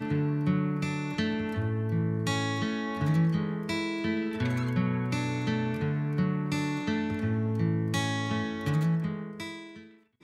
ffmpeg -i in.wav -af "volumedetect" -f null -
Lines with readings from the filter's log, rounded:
mean_volume: -29.1 dB
max_volume: -15.6 dB